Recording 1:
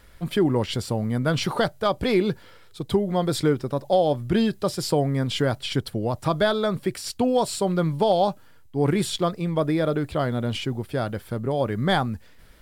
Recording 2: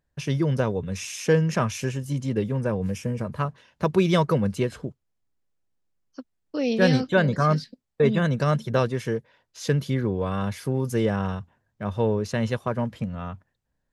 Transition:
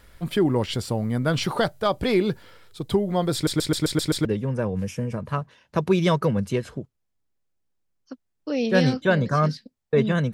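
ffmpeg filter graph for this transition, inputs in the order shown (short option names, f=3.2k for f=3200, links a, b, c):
-filter_complex "[0:a]apad=whole_dur=10.33,atrim=end=10.33,asplit=7[a][b][c][d][e][f][g];[a]atrim=end=3.472[h];[b]atrim=start=3.338:end=3.472[i];[c]atrim=start=3.338:end=3.472[j];[d]atrim=start=3.338:end=3.472[k];[e]atrim=start=3.338:end=3.472[l];[f]atrim=start=3.338:end=3.472[m];[g]atrim=start=3.338:end=3.472[n];[1:a]atrim=start=2.318:end=8.4[o];[h][i]acrossfade=d=0.004:c1=hsin:c2=hsin[p];[p][j]acrossfade=d=0.004:c1=hsin:c2=hsin[q];[q][k]acrossfade=d=0.004:c1=hsin:c2=hsin[r];[r][l]acrossfade=d=0.004:c1=hsin:c2=hsin[s];[s][m]acrossfade=d=0.004:c1=hsin:c2=hsin[t];[t][n]acrossfade=d=0.004:c1=hsin:c2=hsin[u];[u][o]acrossfade=d=0.004:c1=hsin:c2=hsin"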